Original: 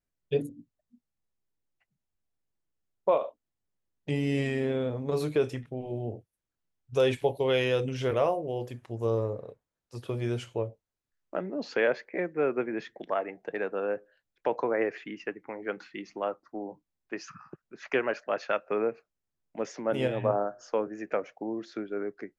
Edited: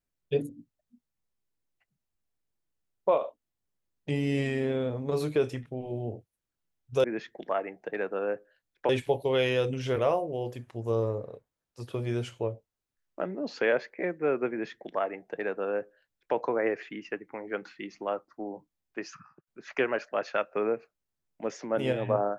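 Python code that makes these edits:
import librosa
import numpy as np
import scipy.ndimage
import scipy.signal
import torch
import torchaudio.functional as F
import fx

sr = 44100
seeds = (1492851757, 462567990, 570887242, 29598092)

y = fx.edit(x, sr, fx.duplicate(start_s=12.65, length_s=1.85, to_s=7.04),
    fx.fade_out_span(start_s=17.23, length_s=0.39), tone=tone)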